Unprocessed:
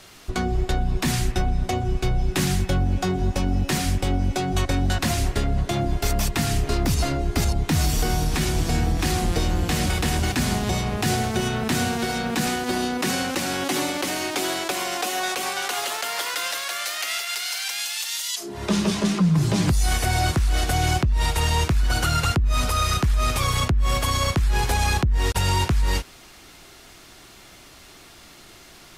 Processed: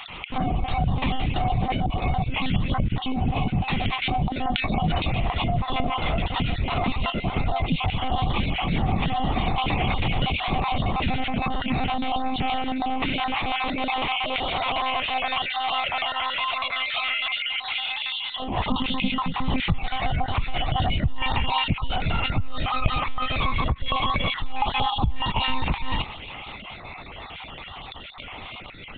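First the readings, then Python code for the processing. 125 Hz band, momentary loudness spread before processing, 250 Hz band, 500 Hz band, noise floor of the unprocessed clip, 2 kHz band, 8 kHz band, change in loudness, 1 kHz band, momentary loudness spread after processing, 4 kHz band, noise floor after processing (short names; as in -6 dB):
-4.0 dB, 4 LU, -3.0 dB, -4.0 dB, -47 dBFS, 0.0 dB, under -40 dB, -2.0 dB, +2.5 dB, 5 LU, +0.5 dB, -39 dBFS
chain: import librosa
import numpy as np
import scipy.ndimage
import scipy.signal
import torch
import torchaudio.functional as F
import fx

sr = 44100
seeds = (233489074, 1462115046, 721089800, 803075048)

p1 = fx.spec_dropout(x, sr, seeds[0], share_pct=30)
p2 = fx.highpass(p1, sr, hz=64.0, slope=6)
p3 = fx.low_shelf(p2, sr, hz=110.0, db=-7.0)
p4 = fx.over_compress(p3, sr, threshold_db=-36.0, ratio=-1.0)
p5 = p3 + (p4 * 10.0 ** (2.5 / 20.0))
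p6 = 10.0 ** (-10.5 / 20.0) * np.tanh(p5 / 10.0 ** (-10.5 / 20.0))
p7 = fx.fixed_phaser(p6, sr, hz=1600.0, stages=6)
p8 = fx.wow_flutter(p7, sr, seeds[1], rate_hz=2.1, depth_cents=21.0)
p9 = fx.air_absorb(p8, sr, metres=98.0)
p10 = p9 + fx.echo_single(p9, sr, ms=268, db=-24.0, dry=0)
p11 = fx.lpc_monotone(p10, sr, seeds[2], pitch_hz=260.0, order=16)
y = p11 * 10.0 ** (4.0 / 20.0)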